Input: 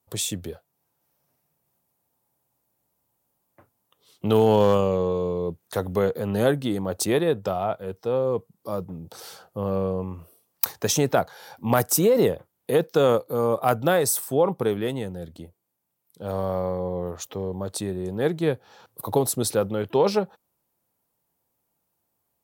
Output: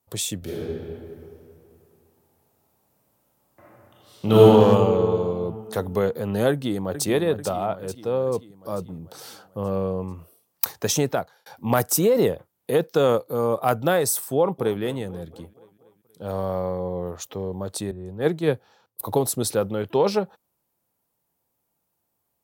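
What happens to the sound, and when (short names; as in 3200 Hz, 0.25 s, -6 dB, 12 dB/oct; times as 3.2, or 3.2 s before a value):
0.38–4.43 reverb throw, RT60 2.6 s, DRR -8.5 dB
6.5–7.06 echo throw 0.44 s, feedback 60%, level -9.5 dB
11–11.46 fade out
14.34–14.81 echo throw 0.24 s, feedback 60%, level -17.5 dB
17.91–19.01 three-band expander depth 100%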